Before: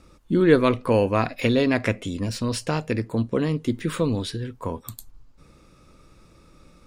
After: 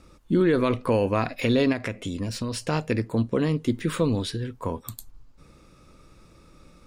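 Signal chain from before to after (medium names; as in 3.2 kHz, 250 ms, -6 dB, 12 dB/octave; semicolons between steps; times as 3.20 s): peak limiter -12.5 dBFS, peak gain reduction 8.5 dB; 1.72–2.69 s: compression, threshold -26 dBFS, peak gain reduction 6.5 dB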